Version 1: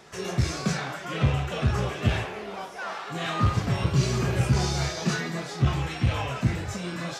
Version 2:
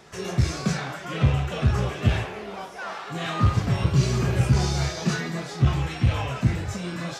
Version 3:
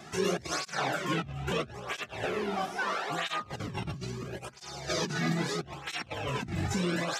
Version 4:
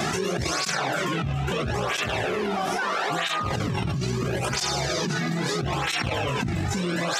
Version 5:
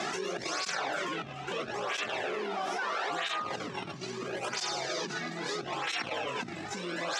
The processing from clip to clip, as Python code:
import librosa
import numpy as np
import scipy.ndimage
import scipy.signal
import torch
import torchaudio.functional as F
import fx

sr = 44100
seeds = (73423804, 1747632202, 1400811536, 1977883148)

y1 = fx.low_shelf(x, sr, hz=170.0, db=4.5)
y2 = fx.over_compress(y1, sr, threshold_db=-31.0, ratio=-1.0)
y2 = fx.flanger_cancel(y2, sr, hz=0.76, depth_ms=2.2)
y3 = fx.env_flatten(y2, sr, amount_pct=100)
y4 = fx.bandpass_edges(y3, sr, low_hz=310.0, high_hz=7100.0)
y4 = y4 + 10.0 ** (-24.0 / 20.0) * np.pad(y4, (int(904 * sr / 1000.0), 0))[:len(y4)]
y4 = y4 * 10.0 ** (-6.5 / 20.0)